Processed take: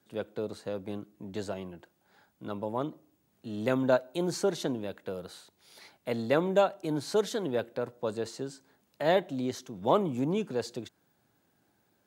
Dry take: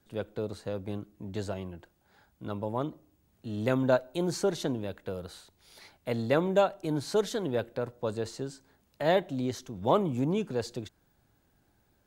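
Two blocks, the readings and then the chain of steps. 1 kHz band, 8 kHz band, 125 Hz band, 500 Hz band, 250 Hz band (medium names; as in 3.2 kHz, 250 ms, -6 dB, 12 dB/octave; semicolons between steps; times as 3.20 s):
0.0 dB, 0.0 dB, -4.0 dB, 0.0 dB, -0.5 dB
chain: high-pass 150 Hz 12 dB/octave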